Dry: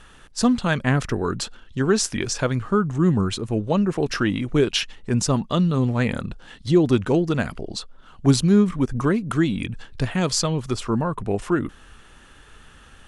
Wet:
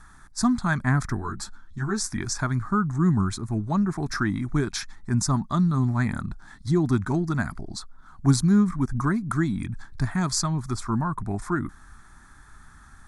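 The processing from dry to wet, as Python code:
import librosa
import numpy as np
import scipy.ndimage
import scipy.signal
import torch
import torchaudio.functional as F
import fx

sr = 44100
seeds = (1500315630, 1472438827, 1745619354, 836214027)

y = fx.fixed_phaser(x, sr, hz=1200.0, stages=4)
y = fx.ensemble(y, sr, at=(1.2, 2.09), fade=0.02)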